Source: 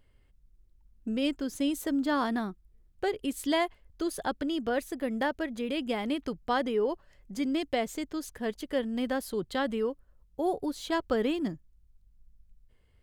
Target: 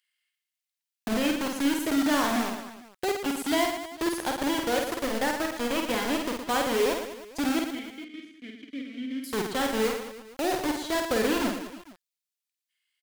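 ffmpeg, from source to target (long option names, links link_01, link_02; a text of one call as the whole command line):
ffmpeg -i in.wav -filter_complex "[0:a]acrossover=split=1800[link_01][link_02];[link_01]acrusher=bits=4:mix=0:aa=0.000001[link_03];[link_03][link_02]amix=inputs=2:normalize=0,asettb=1/sr,asplit=3[link_04][link_05][link_06];[link_04]atrim=end=7.594[link_07];[link_05]atrim=start=7.59:end=9.24,asetpts=PTS-STARTPTS,afade=type=in:duration=0.004:curve=qsin,afade=type=out:start_time=1.646:duration=0.004:curve=qsin,asplit=3[link_08][link_09][link_10];[link_08]bandpass=frequency=270:width_type=q:width=8,volume=0dB[link_11];[link_09]bandpass=frequency=2290:width_type=q:width=8,volume=-6dB[link_12];[link_10]bandpass=frequency=3010:width_type=q:width=8,volume=-9dB[link_13];[link_11][link_12][link_13]amix=inputs=3:normalize=0[link_14];[link_06]atrim=start=9.236[link_15];[link_07][link_14]acrossfade=duration=0.004:curve1=hsin:curve2=qsin[link_16];[link_16][link_15]acrossfade=duration=0.004:curve1=qsin:curve2=hsin,aecho=1:1:50|115|199.5|309.4|452.2:0.631|0.398|0.251|0.158|0.1" out.wav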